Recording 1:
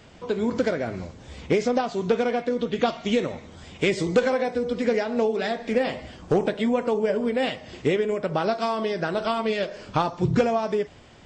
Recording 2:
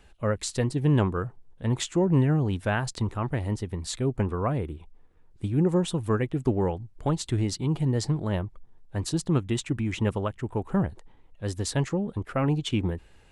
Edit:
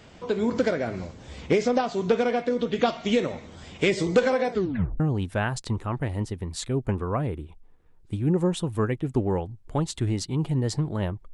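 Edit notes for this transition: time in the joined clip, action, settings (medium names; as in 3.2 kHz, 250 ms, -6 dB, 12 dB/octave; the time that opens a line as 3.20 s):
recording 1
4.51 s: tape stop 0.49 s
5.00 s: go over to recording 2 from 2.31 s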